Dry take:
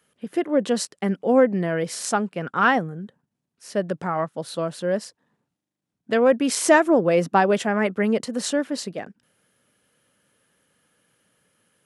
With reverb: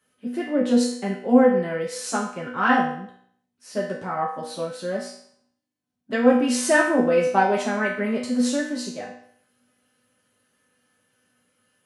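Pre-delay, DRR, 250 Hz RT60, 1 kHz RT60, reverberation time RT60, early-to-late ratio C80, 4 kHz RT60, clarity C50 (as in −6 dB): 4 ms, −6.5 dB, 0.65 s, 0.65 s, 0.60 s, 7.5 dB, 0.60 s, 4.0 dB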